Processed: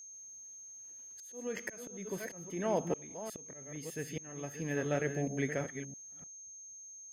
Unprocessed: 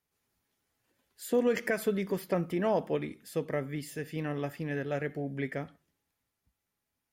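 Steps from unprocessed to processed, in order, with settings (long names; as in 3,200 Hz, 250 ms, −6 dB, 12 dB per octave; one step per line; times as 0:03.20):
delay that plays each chunk backwards 330 ms, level −8.5 dB
volume swells 644 ms
steady tone 6,400 Hz −48 dBFS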